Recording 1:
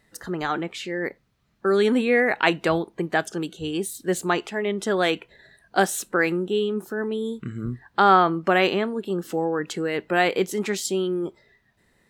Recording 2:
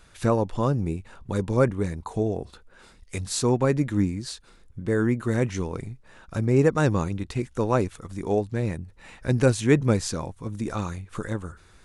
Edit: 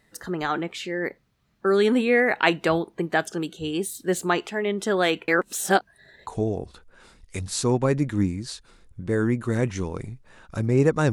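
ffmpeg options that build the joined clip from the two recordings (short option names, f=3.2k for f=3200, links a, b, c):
-filter_complex "[0:a]apad=whole_dur=11.12,atrim=end=11.12,asplit=2[a][b];[a]atrim=end=5.282[c];[b]atrim=start=5.278:end=6.272,asetpts=PTS-STARTPTS,areverse[d];[1:a]atrim=start=2.058:end=6.91[e];[c][d]acrossfade=d=0.004:c1=hsin:c2=hsin[f];[f][e]acrossfade=d=0.004:c1=hsin:c2=hsin"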